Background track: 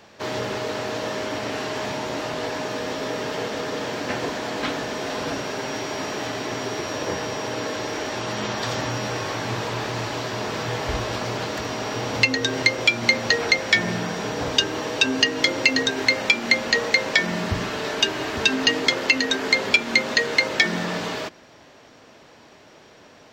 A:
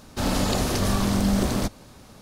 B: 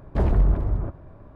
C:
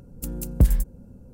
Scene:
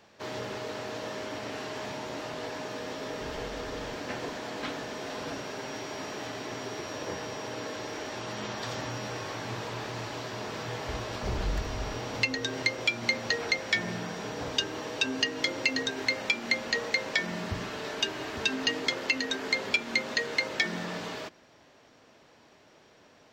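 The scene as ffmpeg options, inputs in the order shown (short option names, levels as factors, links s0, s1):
-filter_complex "[2:a]asplit=2[s0][s1];[0:a]volume=0.355[s2];[s0]asoftclip=type=tanh:threshold=0.0473,atrim=end=1.35,asetpts=PTS-STARTPTS,volume=0.133,afade=t=in:d=0.004:c=hsin,afade=t=out:st=1.346:d=0.004:c=hsin,adelay=3060[s3];[s1]atrim=end=1.35,asetpts=PTS-STARTPTS,volume=0.224,afade=t=in:d=0.004:c=hsin,afade=t=out:st=1.346:d=0.004:c=hsin,adelay=11080[s4];[s2][s3][s4]amix=inputs=3:normalize=0"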